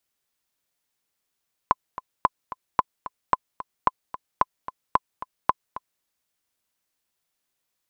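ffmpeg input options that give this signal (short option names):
-f lavfi -i "aevalsrc='pow(10,(-4-15*gte(mod(t,2*60/222),60/222))/20)*sin(2*PI*1020*mod(t,60/222))*exp(-6.91*mod(t,60/222)/0.03)':d=4.32:s=44100"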